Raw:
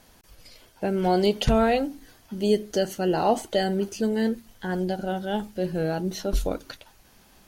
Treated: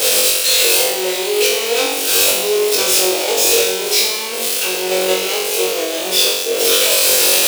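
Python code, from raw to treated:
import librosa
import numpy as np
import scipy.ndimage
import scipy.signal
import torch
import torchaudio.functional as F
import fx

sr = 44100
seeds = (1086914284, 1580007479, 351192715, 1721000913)

p1 = np.sign(x) * np.sqrt(np.mean(np.square(x)))
p2 = scipy.signal.sosfilt(scipy.signal.butter(4, 480.0, 'highpass', fs=sr, output='sos'), p1)
p3 = fx.band_shelf(p2, sr, hz=1400.0, db=-11.0, octaves=1.7)
p4 = fx.level_steps(p3, sr, step_db=15)
p5 = p3 + (p4 * librosa.db_to_amplitude(0.0))
p6 = fx.formant_shift(p5, sr, semitones=-3)
p7 = 10.0 ** (-16.5 / 20.0) * np.tanh(p6 / 10.0 ** (-16.5 / 20.0))
p8 = fx.room_flutter(p7, sr, wall_m=3.7, rt60_s=0.87)
y = p8 * librosa.db_to_amplitude(7.5)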